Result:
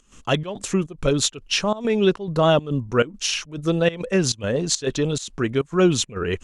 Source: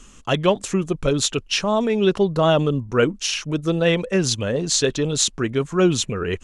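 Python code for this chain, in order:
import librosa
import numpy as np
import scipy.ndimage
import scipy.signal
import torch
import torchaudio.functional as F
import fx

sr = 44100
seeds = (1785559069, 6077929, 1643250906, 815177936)

y = fx.volume_shaper(x, sr, bpm=139, per_beat=1, depth_db=-18, release_ms=117.0, shape='slow start')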